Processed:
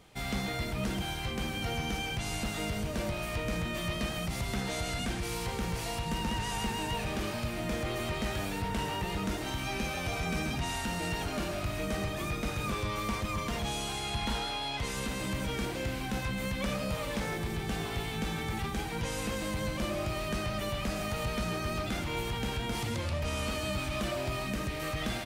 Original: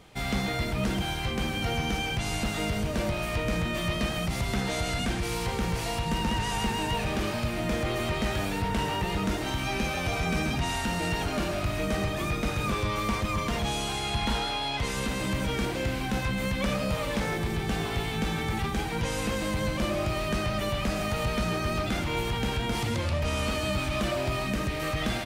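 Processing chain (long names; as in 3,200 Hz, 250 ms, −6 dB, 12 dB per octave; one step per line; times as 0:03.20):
high-shelf EQ 6,400 Hz +4 dB
level −5 dB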